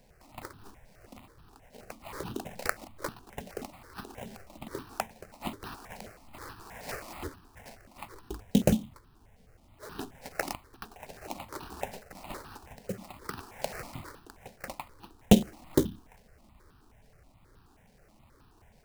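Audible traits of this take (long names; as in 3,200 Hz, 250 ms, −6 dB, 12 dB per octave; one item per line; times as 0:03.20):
aliases and images of a low sample rate 3,400 Hz, jitter 20%
notches that jump at a steady rate 9.4 Hz 330–2,100 Hz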